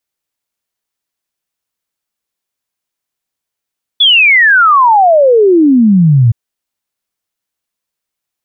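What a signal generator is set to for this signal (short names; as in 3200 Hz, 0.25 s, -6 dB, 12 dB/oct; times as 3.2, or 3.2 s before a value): log sweep 3500 Hz -> 110 Hz 2.32 s -3.5 dBFS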